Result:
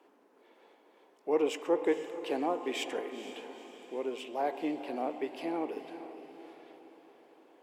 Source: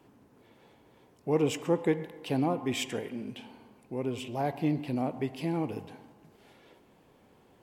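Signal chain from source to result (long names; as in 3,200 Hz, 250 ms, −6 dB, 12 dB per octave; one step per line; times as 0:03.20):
high-pass filter 330 Hz 24 dB per octave
high-shelf EQ 4,500 Hz −8.5 dB
on a send: feedback delay with all-pass diffusion 465 ms, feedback 51%, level −11.5 dB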